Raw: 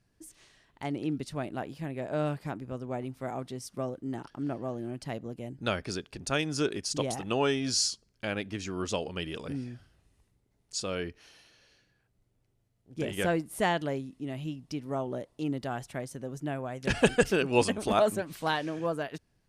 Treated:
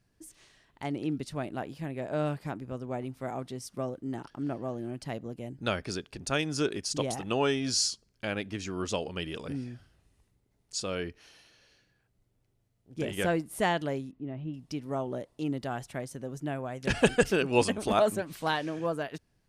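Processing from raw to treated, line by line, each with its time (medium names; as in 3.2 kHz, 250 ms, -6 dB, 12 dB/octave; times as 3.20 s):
14.11–14.54 s: tape spacing loss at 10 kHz 43 dB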